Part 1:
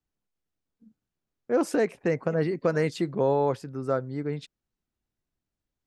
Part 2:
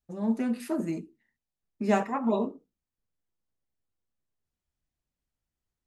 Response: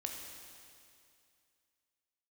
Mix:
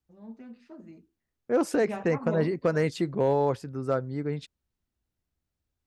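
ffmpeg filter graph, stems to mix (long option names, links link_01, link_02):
-filter_complex "[0:a]asoftclip=type=hard:threshold=-14.5dB,volume=-0.5dB[link_01];[1:a]lowpass=frequency=5500:width=0.5412,lowpass=frequency=5500:width=1.3066,volume=-7dB,afade=type=in:start_time=1.61:duration=0.74:silence=0.298538[link_02];[link_01][link_02]amix=inputs=2:normalize=0,equalizer=frequency=70:width_type=o:width=0.82:gain=9.5"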